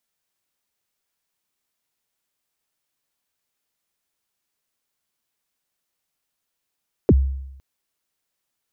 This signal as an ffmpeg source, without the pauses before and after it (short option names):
-f lavfi -i "aevalsrc='0.398*pow(10,-3*t/0.87)*sin(2*PI*(510*0.043/log(67/510)*(exp(log(67/510)*min(t,0.043)/0.043)-1)+67*max(t-0.043,0)))':d=0.51:s=44100"